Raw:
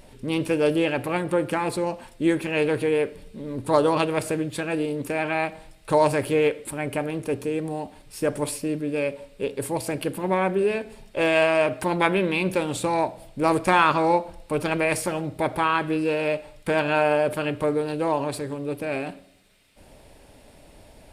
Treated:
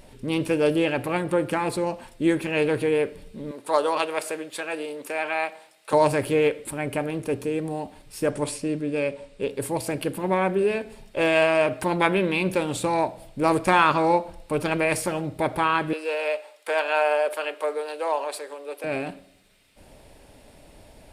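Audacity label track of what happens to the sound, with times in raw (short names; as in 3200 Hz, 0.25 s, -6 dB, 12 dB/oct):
3.510000	5.930000	HPF 520 Hz
8.310000	9.480000	LPF 9900 Hz 24 dB/oct
15.930000	18.840000	HPF 480 Hz 24 dB/oct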